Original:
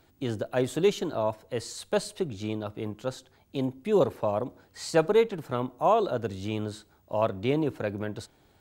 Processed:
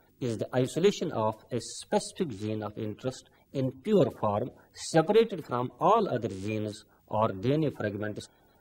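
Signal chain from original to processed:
spectral magnitudes quantised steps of 30 dB

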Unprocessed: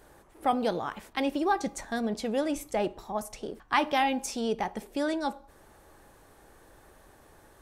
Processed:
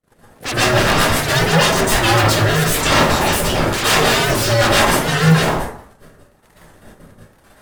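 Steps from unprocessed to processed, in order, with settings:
sub-harmonics by changed cycles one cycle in 2, inverted
noise gate −51 dBFS, range −50 dB
reversed playback
downward compressor 10 to 1, threshold −34 dBFS, peak gain reduction 15 dB
reversed playback
harmonic and percussive parts rebalanced percussive +4 dB
sine wavefolder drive 20 dB, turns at −20 dBFS
rotating-speaker cabinet horn 7.5 Hz, later 1.1 Hz, at 0:00.84
dense smooth reverb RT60 0.56 s, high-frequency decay 0.6×, pre-delay 105 ms, DRR −9.5 dB
wow of a warped record 78 rpm, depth 100 cents
level +2 dB

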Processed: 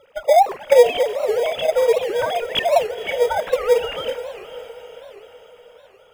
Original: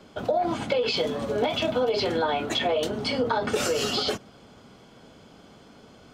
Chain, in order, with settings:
three sine waves on the formant tracks
in parallel at −10 dB: decimation without filtering 31×
on the sum: feedback delay with all-pass diffusion 504 ms, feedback 52%, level −13.5 dB
wow of a warped record 78 rpm, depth 250 cents
level +6.5 dB

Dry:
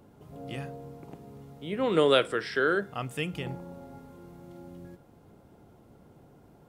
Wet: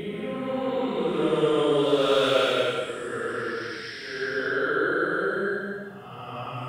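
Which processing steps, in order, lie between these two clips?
gain into a clipping stage and back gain 12.5 dB
extreme stretch with random phases 5×, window 0.25 s, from 0:01.69

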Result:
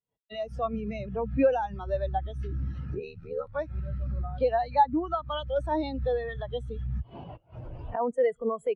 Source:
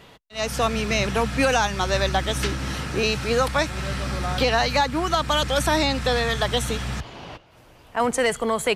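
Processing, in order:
camcorder AGC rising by 76 dB per second
0:02.99–0:03.55: ring modulation 38 Hz
every bin expanded away from the loudest bin 2.5 to 1
level −5.5 dB

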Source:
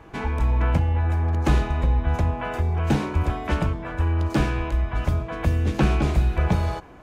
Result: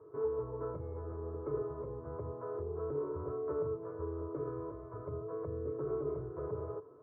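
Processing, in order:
elliptic band-pass filter 110–1,000 Hz, stop band 50 dB
brickwall limiter −20.5 dBFS, peak gain reduction 9.5 dB
phaser with its sweep stopped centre 790 Hz, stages 6
tuned comb filter 430 Hz, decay 0.16 s, harmonics odd, mix 90%
level +9 dB

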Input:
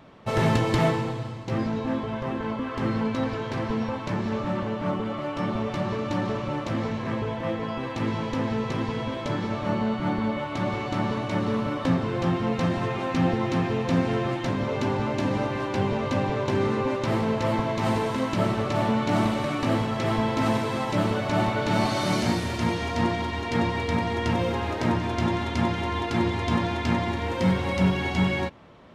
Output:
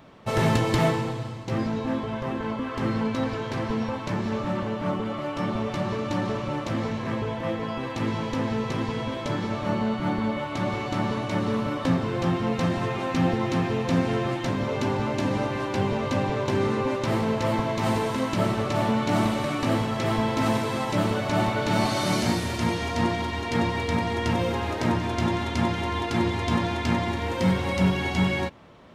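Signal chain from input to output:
high-shelf EQ 7,000 Hz +6.5 dB

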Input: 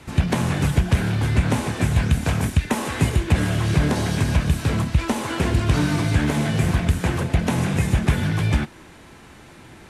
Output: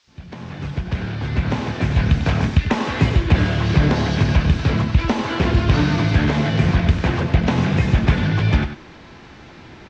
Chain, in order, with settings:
fade in at the beginning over 2.35 s
on a send: single-tap delay 97 ms −10 dB
on the sum: background noise blue −53 dBFS
inverse Chebyshev low-pass filter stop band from 9,600 Hz, stop band 40 dB
level +3 dB

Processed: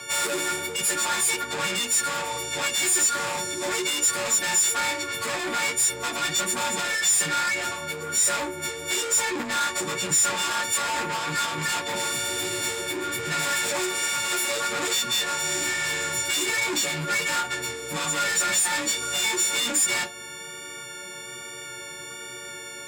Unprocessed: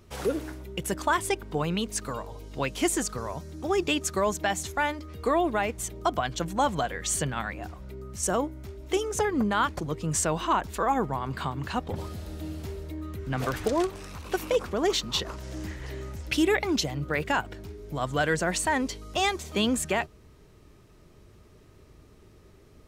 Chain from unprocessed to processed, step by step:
every partial snapped to a pitch grid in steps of 4 semitones
high-shelf EQ 5,800 Hz −8.5 dB
in parallel at +3 dB: downward compressor, threshold −31 dBFS, peak gain reduction 14 dB
on the sum: mid-hump overdrive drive 28 dB, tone 4,100 Hz, clips at −6.5 dBFS
flanger 1.2 Hz, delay 1.2 ms, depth 5.7 ms, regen −59%
soft clipping −20.5 dBFS, distortion −12 dB
frequency shifter +17 Hz
convolution reverb RT60 0.20 s, pre-delay 3 ms, DRR 6.5 dB

